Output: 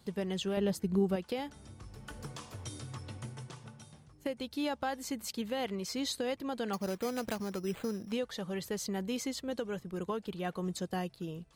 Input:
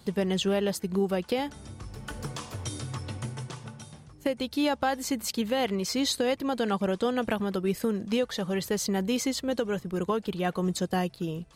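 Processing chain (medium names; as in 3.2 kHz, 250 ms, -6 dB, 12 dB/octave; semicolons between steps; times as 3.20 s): 0.57–1.16 s: bass shelf 360 Hz +9.5 dB; 6.73–8.12 s: careless resampling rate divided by 8×, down none, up hold; trim -8 dB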